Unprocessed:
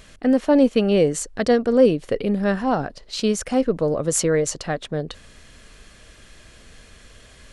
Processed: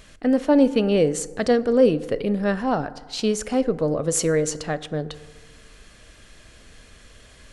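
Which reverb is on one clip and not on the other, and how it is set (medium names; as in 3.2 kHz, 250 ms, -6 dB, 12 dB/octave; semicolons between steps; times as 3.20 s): FDN reverb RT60 1.5 s, low-frequency decay 0.8×, high-frequency decay 0.4×, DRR 14.5 dB; trim -1.5 dB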